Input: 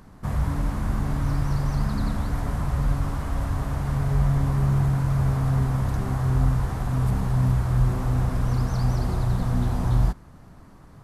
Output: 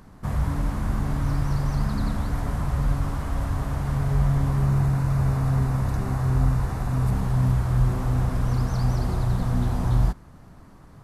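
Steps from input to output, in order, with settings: 4.65–7.13 s: band-stop 3.2 kHz, Q 11

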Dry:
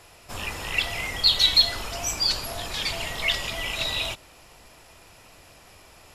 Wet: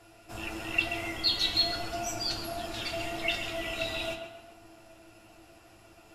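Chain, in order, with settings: octave divider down 1 oct, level +3 dB; feedback comb 110 Hz, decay 0.23 s, harmonics all, mix 80%; small resonant body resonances 330/690/1400/2700 Hz, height 14 dB, ringing for 65 ms; tape echo 133 ms, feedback 53%, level -6 dB, low-pass 2.6 kHz; trim -2.5 dB

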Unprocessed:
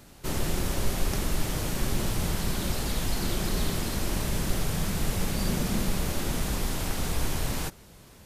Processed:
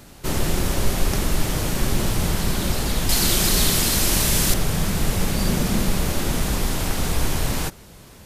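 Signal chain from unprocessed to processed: 3.09–4.54 s: treble shelf 2.4 kHz +10.5 dB; trim +6.5 dB

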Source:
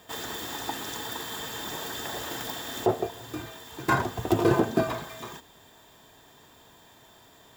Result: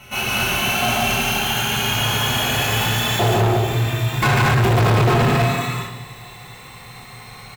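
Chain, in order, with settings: gliding tape speed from 82% -> 118%; graphic EQ with 31 bands 125 Hz +10 dB, 315 Hz -11 dB, 500 Hz -4 dB, 2.5 kHz +11 dB, 5 kHz -4 dB; loudspeakers at several distances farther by 50 m -3 dB, 69 m -4 dB, 84 m -10 dB; reverberation RT60 0.95 s, pre-delay 4 ms, DRR -4 dB; overload inside the chain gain 17 dB; trim +3.5 dB

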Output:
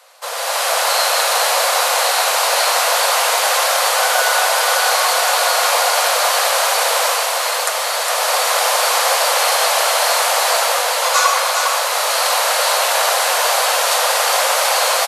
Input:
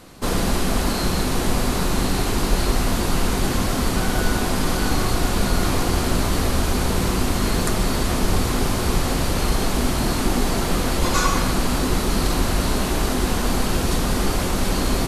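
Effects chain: steep high-pass 510 Hz 72 dB/octave; level rider gain up to 11.5 dB; delay 409 ms -5.5 dB

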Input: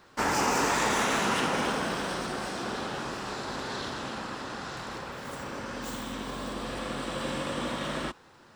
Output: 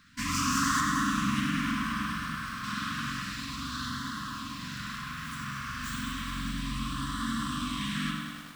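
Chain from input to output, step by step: 0.80–2.64 s: treble shelf 2.1 kHz -9.5 dB; spring tank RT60 1 s, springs 44 ms, chirp 25 ms, DRR 0.5 dB; LFO notch sine 0.31 Hz 300–2500 Hz; FFT band-reject 300–1000 Hz; bit-crushed delay 102 ms, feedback 80%, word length 8-bit, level -7.5 dB

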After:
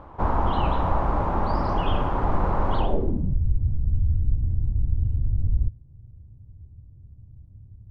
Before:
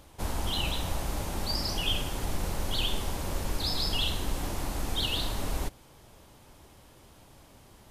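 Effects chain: low-pass sweep 1.1 kHz -> 100 Hz, 2.77–3.40 s; trim +8.5 dB

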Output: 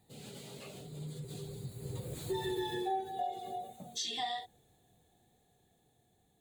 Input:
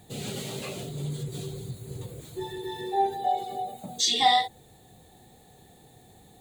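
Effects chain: Doppler pass-by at 2.49 s, 10 m/s, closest 2.1 m; compression 3:1, threshold -41 dBFS, peak gain reduction 10.5 dB; trim +6.5 dB

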